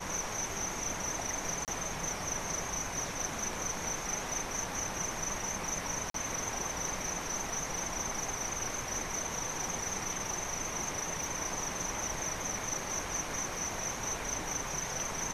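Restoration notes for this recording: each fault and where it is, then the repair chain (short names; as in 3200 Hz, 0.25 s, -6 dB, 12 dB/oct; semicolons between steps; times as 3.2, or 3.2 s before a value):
1.65–1.68 gap 28 ms
6.1–6.14 gap 43 ms
11.24 pop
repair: de-click; interpolate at 1.65, 28 ms; interpolate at 6.1, 43 ms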